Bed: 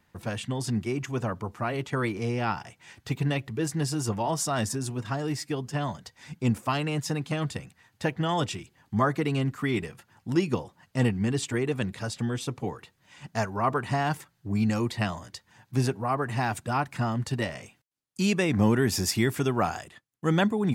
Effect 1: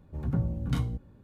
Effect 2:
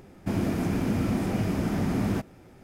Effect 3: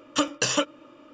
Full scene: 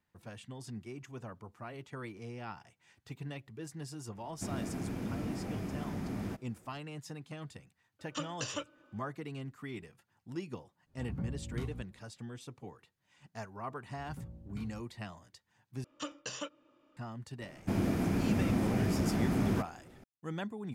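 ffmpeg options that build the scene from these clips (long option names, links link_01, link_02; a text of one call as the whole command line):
ffmpeg -i bed.wav -i cue0.wav -i cue1.wav -i cue2.wav -filter_complex "[2:a]asplit=2[link_01][link_02];[3:a]asplit=2[link_03][link_04];[1:a]asplit=2[link_05][link_06];[0:a]volume=-15.5dB[link_07];[link_03]aeval=exprs='val(0)+0.002*sin(2*PI*1500*n/s)':channel_layout=same[link_08];[link_07]asplit=2[link_09][link_10];[link_09]atrim=end=15.844[link_11];[link_04]atrim=end=1.13,asetpts=PTS-STARTPTS,volume=-17dB[link_12];[link_10]atrim=start=16.966[link_13];[link_01]atrim=end=2.63,asetpts=PTS-STARTPTS,volume=-11.5dB,afade=type=in:duration=0.004:curve=hsin,afade=type=out:start_time=2.626:duration=0.004:curve=hsin,adelay=4150[link_14];[link_08]atrim=end=1.13,asetpts=PTS-STARTPTS,volume=-15dB,afade=type=in:duration=0.004:curve=hsin,afade=type=out:start_time=1.126:duration=0.004:curve=hsin,adelay=7990[link_15];[link_05]atrim=end=1.23,asetpts=PTS-STARTPTS,volume=-10.5dB,afade=type=in:duration=0.1,afade=type=out:start_time=1.13:duration=0.1,adelay=10850[link_16];[link_06]atrim=end=1.23,asetpts=PTS-STARTPTS,volume=-18dB,afade=type=in:duration=0.004:curve=hsin,afade=type=out:start_time=1.226:duration=0.004:curve=hsin,adelay=13840[link_17];[link_02]atrim=end=2.63,asetpts=PTS-STARTPTS,volume=-4dB,afade=type=in:duration=0.004:curve=hsin,afade=type=out:start_time=2.626:duration=0.004:curve=hsin,adelay=17410[link_18];[link_11][link_12]acrossfade=duration=0.004:curve1=hsin:curve2=hsin[link_19];[link_19][link_13]acrossfade=duration=0.004:curve1=hsin:curve2=hsin[link_20];[link_20][link_14][link_15][link_16][link_17][link_18]amix=inputs=6:normalize=0" out.wav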